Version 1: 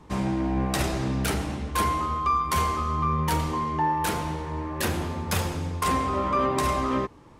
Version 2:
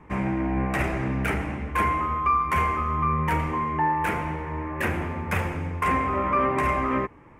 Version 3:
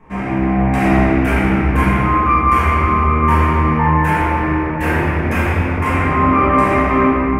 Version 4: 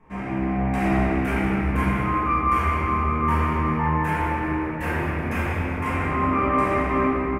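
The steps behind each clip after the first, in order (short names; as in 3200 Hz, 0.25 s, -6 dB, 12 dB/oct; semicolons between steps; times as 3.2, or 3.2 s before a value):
resonant high shelf 3000 Hz -10.5 dB, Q 3
shoebox room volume 180 m³, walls hard, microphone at 1.6 m; gain -1 dB
feedback echo 0.188 s, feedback 52%, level -12 dB; gain -8.5 dB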